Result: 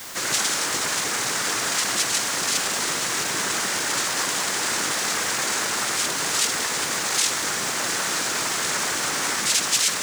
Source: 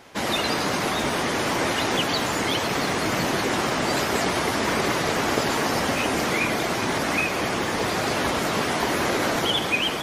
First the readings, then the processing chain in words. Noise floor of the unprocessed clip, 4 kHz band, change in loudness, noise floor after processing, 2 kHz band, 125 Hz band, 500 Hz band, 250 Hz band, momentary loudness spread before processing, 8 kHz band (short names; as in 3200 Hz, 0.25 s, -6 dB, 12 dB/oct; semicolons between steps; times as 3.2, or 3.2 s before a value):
-26 dBFS, +2.5 dB, +1.5 dB, -26 dBFS, -0.5 dB, -10.5 dB, -8.5 dB, -10.0 dB, 2 LU, +11.0 dB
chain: overloaded stage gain 22.5 dB; limiter -30 dBFS, peak gain reduction 7.5 dB; noise vocoder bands 3; tilt +3 dB/oct; added noise white -46 dBFS; gain +6.5 dB